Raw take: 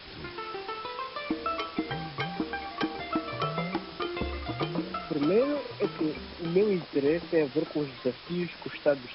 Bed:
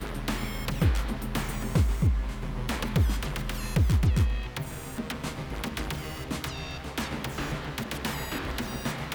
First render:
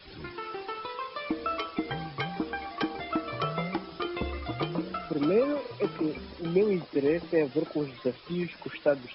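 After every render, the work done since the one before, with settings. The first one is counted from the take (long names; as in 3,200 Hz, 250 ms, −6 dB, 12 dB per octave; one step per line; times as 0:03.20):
broadband denoise 10 dB, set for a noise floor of −45 dBFS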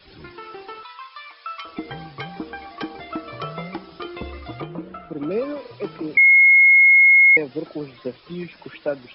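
0:00.83–0:01.65: high-pass filter 980 Hz 24 dB per octave
0:04.61–0:05.31: high-frequency loss of the air 410 metres
0:06.17–0:07.37: beep over 2,160 Hz −8.5 dBFS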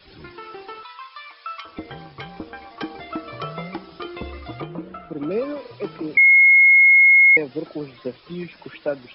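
0:01.60–0:02.81: amplitude modulation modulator 230 Hz, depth 50%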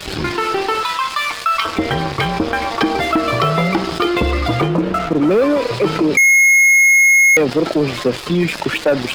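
leveller curve on the samples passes 3
envelope flattener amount 50%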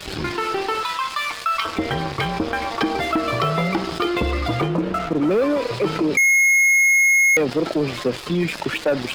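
level −5 dB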